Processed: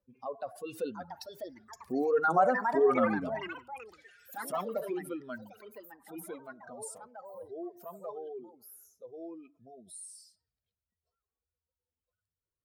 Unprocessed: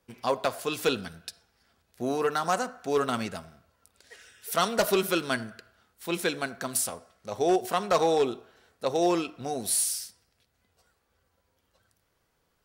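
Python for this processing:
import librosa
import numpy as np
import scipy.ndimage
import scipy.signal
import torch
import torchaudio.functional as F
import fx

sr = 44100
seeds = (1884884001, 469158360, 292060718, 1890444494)

y = fx.spec_expand(x, sr, power=2.2)
y = fx.doppler_pass(y, sr, speed_mps=18, closest_m=8.5, pass_at_s=2.57)
y = fx.echo_pitch(y, sr, ms=770, semitones=4, count=3, db_per_echo=-6.0)
y = F.gain(torch.from_numpy(y), 3.0).numpy()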